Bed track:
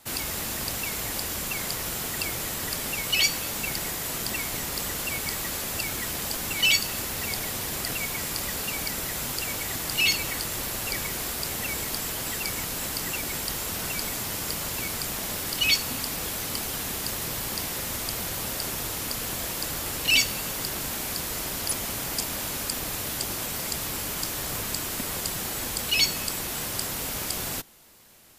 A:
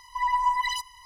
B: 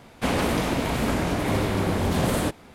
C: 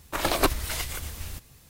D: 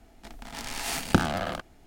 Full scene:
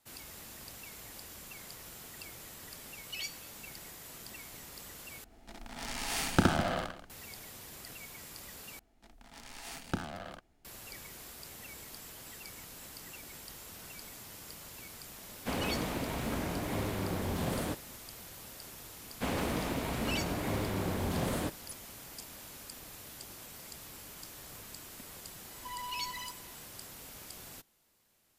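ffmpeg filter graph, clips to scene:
ffmpeg -i bed.wav -i cue0.wav -i cue1.wav -i cue2.wav -i cue3.wav -filter_complex "[4:a]asplit=2[link_01][link_02];[2:a]asplit=2[link_03][link_04];[0:a]volume=-17.5dB[link_05];[link_01]aecho=1:1:67.06|204.1:0.891|0.251[link_06];[1:a]asoftclip=type=tanh:threshold=-31dB[link_07];[link_05]asplit=3[link_08][link_09][link_10];[link_08]atrim=end=5.244[link_11];[link_06]atrim=end=1.86,asetpts=PTS-STARTPTS,volume=-5dB[link_12];[link_09]atrim=start=7.096:end=8.794[link_13];[link_02]atrim=end=1.86,asetpts=PTS-STARTPTS,volume=-13.5dB[link_14];[link_10]atrim=start=10.646[link_15];[link_03]atrim=end=2.74,asetpts=PTS-STARTPTS,volume=-11dB,afade=type=in:duration=0.004:curve=hsin,afade=type=out:start_time=2.736:duration=0.004:curve=hsin,adelay=672084S[link_16];[link_04]atrim=end=2.74,asetpts=PTS-STARTPTS,volume=-10dB,afade=type=in:duration=0.004:curve=hsin,afade=type=out:start_time=2.736:duration=0.004:curve=hsin,adelay=18990[link_17];[link_07]atrim=end=1.05,asetpts=PTS-STARTPTS,volume=-9dB,afade=type=in:duration=0.004:curve=hsin,afade=type=out:start_time=1.046:duration=0.004:curve=hsin,adelay=25500[link_18];[link_11][link_12]acrossfade=duration=0.004:curve1=hsin:curve2=hsin[link_19];[link_19][link_13]acrossfade=duration=0.004:curve1=hsin:curve2=hsin[link_20];[link_20][link_14]acrossfade=duration=0.004:curve1=hsin:curve2=hsin[link_21];[link_21][link_15]acrossfade=duration=0.004:curve1=hsin:curve2=hsin[link_22];[link_22][link_16][link_17][link_18]amix=inputs=4:normalize=0" out.wav

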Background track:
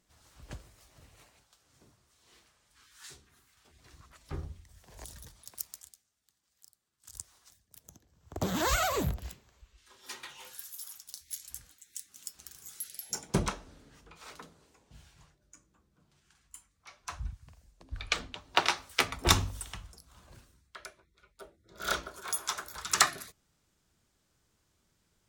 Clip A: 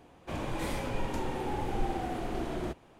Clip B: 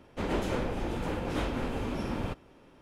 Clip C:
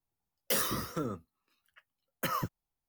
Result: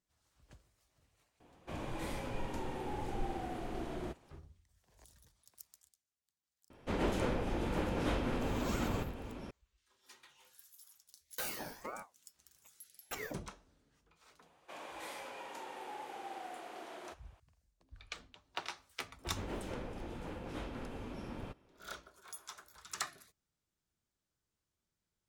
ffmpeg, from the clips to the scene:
ffmpeg -i bed.wav -i cue0.wav -i cue1.wav -i cue2.wav -filter_complex "[1:a]asplit=2[link_01][link_02];[2:a]asplit=2[link_03][link_04];[0:a]volume=-15.5dB[link_05];[link_03]aecho=1:1:740:0.316[link_06];[3:a]aeval=exprs='val(0)*sin(2*PI*700*n/s+700*0.5/1.8*sin(2*PI*1.8*n/s))':channel_layout=same[link_07];[link_02]highpass=610[link_08];[link_01]atrim=end=2.99,asetpts=PTS-STARTPTS,volume=-6.5dB,afade=type=in:duration=0.004:curve=hsin,afade=type=out:start_time=2.986:duration=0.004:curve=hsin,adelay=1400[link_09];[link_06]atrim=end=2.81,asetpts=PTS-STARTPTS,volume=-3dB,afade=type=in:duration=0.004:curve=hsin,afade=type=out:start_time=2.806:duration=0.004:curve=hsin,adelay=6700[link_10];[link_07]atrim=end=2.88,asetpts=PTS-STARTPTS,volume=-7dB,afade=type=in:duration=0.004:curve=hsin,afade=type=out:start_time=2.876:duration=0.004:curve=hsin,adelay=10880[link_11];[link_08]atrim=end=2.99,asetpts=PTS-STARTPTS,volume=-7dB,afade=type=in:duration=0.004:curve=hsin,afade=type=out:start_time=2.986:duration=0.004:curve=hsin,adelay=14410[link_12];[link_04]atrim=end=2.81,asetpts=PTS-STARTPTS,volume=-11.5dB,afade=type=in:duration=0.004:curve=hsin,afade=type=out:start_time=2.806:duration=0.004:curve=hsin,adelay=19190[link_13];[link_05][link_09][link_10][link_11][link_12][link_13]amix=inputs=6:normalize=0" out.wav

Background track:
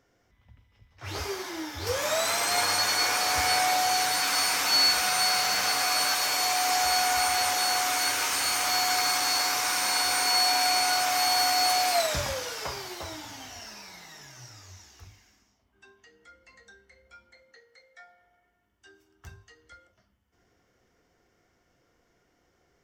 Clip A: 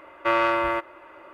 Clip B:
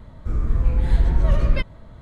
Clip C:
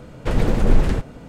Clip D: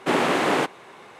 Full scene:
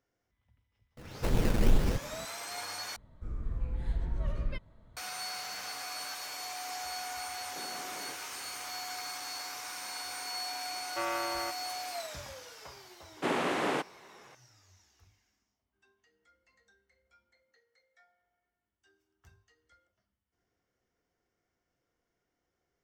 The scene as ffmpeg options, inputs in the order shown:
ffmpeg -i bed.wav -i cue0.wav -i cue1.wav -i cue2.wav -i cue3.wav -filter_complex "[4:a]asplit=2[link_01][link_02];[0:a]volume=-14.5dB[link_03];[3:a]acrusher=samples=17:mix=1:aa=0.000001:lfo=1:lforange=10.2:lforate=2.2[link_04];[link_01]acompressor=threshold=-34dB:ratio=6:attack=3.2:release=140:knee=1:detection=peak[link_05];[link_03]asplit=2[link_06][link_07];[link_06]atrim=end=2.964[link_08];[2:a]atrim=end=2.01,asetpts=PTS-STARTPTS,volume=-15.5dB[link_09];[link_07]atrim=start=4.966[link_10];[link_04]atrim=end=1.28,asetpts=PTS-STARTPTS,volume=-9dB,afade=type=in:duration=0.004:curve=hsin,afade=type=out:start_time=1.276:duration=0.004:curve=hsin,adelay=970[link_11];[link_05]atrim=end=1.19,asetpts=PTS-STARTPTS,volume=-12dB,afade=type=in:duration=0.004:curve=hsin,afade=type=out:start_time=1.186:duration=0.004:curve=hsin,adelay=7500[link_12];[1:a]atrim=end=1.33,asetpts=PTS-STARTPTS,volume=-13dB,afade=type=in:duration=0.004:curve=hsin,afade=type=out:start_time=1.326:duration=0.004:curve=hsin,adelay=10710[link_13];[link_02]atrim=end=1.19,asetpts=PTS-STARTPTS,volume=-9.5dB,afade=type=in:duration=0.004:curve=hsin,afade=type=out:start_time=1.186:duration=0.004:curve=hsin,adelay=580356S[link_14];[link_08][link_09]acrossfade=duration=0.004:curve1=hsin:curve2=hsin[link_15];[link_15][link_10]acrossfade=duration=0.004:curve1=hsin:curve2=hsin[link_16];[link_16][link_11][link_12][link_13][link_14]amix=inputs=5:normalize=0" out.wav

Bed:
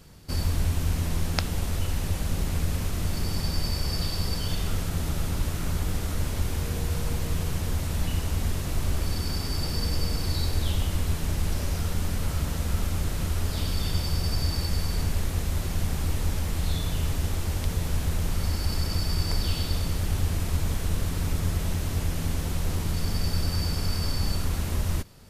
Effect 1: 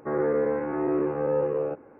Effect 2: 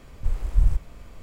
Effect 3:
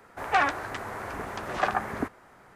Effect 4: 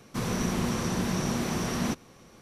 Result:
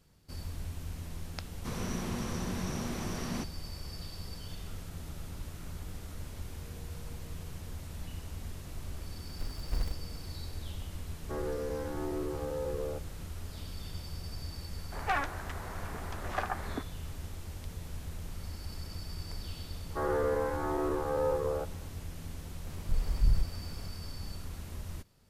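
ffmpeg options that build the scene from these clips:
ffmpeg -i bed.wav -i cue0.wav -i cue1.wav -i cue2.wav -i cue3.wav -filter_complex "[2:a]asplit=2[link_01][link_02];[1:a]asplit=2[link_03][link_04];[0:a]volume=-14.5dB[link_05];[link_01]acrusher=bits=3:mode=log:mix=0:aa=0.000001[link_06];[link_03]alimiter=limit=-19.5dB:level=0:latency=1:release=71[link_07];[link_04]equalizer=frequency=1100:width=0.54:gain=12.5[link_08];[link_02]asoftclip=type=tanh:threshold=-15.5dB[link_09];[4:a]atrim=end=2.41,asetpts=PTS-STARTPTS,volume=-8dB,afade=type=in:duration=0.004:curve=hsin,afade=type=out:start_time=2.406:duration=0.004:curve=hsin,adelay=1500[link_10];[link_06]atrim=end=1.22,asetpts=PTS-STARTPTS,volume=-15dB,afade=type=in:duration=0.004:curve=hsin,afade=type=out:start_time=1.216:duration=0.004:curve=hsin,adelay=9150[link_11];[link_07]atrim=end=1.99,asetpts=PTS-STARTPTS,volume=-9dB,afade=type=in:duration=0.004:curve=hsin,afade=type=out:start_time=1.986:duration=0.004:curve=hsin,adelay=11240[link_12];[3:a]atrim=end=2.55,asetpts=PTS-STARTPTS,volume=-8dB,afade=type=in:duration=0.004:curve=hsin,afade=type=out:start_time=2.546:duration=0.004:curve=hsin,adelay=14750[link_13];[link_08]atrim=end=1.99,asetpts=PTS-STARTPTS,volume=-12dB,afade=type=in:duration=0.004:curve=hsin,afade=type=out:start_time=1.986:duration=0.004:curve=hsin,adelay=19900[link_14];[link_09]atrim=end=1.22,asetpts=PTS-STARTPTS,volume=-2.5dB,afade=type=in:duration=0.004:curve=hsin,afade=type=out:start_time=1.216:duration=0.004:curve=hsin,adelay=22660[link_15];[link_05][link_10][link_11][link_12][link_13][link_14][link_15]amix=inputs=7:normalize=0" out.wav

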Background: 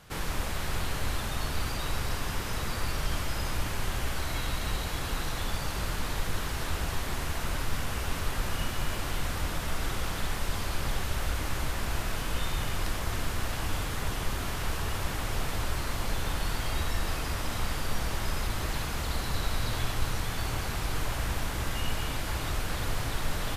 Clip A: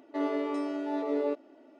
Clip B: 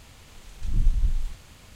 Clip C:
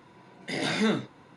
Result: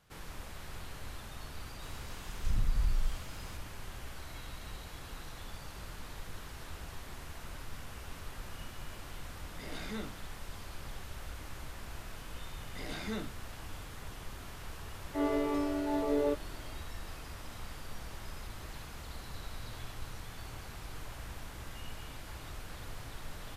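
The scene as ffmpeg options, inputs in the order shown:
ffmpeg -i bed.wav -i cue0.wav -i cue1.wav -i cue2.wav -filter_complex "[3:a]asplit=2[link_01][link_02];[0:a]volume=-13.5dB[link_03];[2:a]acompressor=threshold=-23dB:ratio=6:attack=3.2:release=140:knee=1:detection=peak[link_04];[1:a]dynaudnorm=framelen=100:gausssize=3:maxgain=13dB[link_05];[link_04]atrim=end=1.75,asetpts=PTS-STARTPTS,volume=-1dB,afade=type=in:duration=0.004:curve=hsin,afade=type=out:start_time=1.746:duration=0.004:curve=hsin,adelay=1820[link_06];[link_01]atrim=end=1.36,asetpts=PTS-STARTPTS,volume=-16dB,afade=type=in:duration=0.004:curve=hsin,afade=type=out:start_time=1.356:duration=0.004:curve=hsin,adelay=9100[link_07];[link_02]atrim=end=1.36,asetpts=PTS-STARTPTS,volume=-13.5dB,afade=type=in:duration=0.004:curve=hsin,afade=type=out:start_time=1.356:duration=0.004:curve=hsin,adelay=12270[link_08];[link_05]atrim=end=1.79,asetpts=PTS-STARTPTS,volume=-13.5dB,afade=type=in:duration=0.004:curve=hsin,afade=type=out:start_time=1.786:duration=0.004:curve=hsin,adelay=15000[link_09];[link_03][link_06][link_07][link_08][link_09]amix=inputs=5:normalize=0" out.wav

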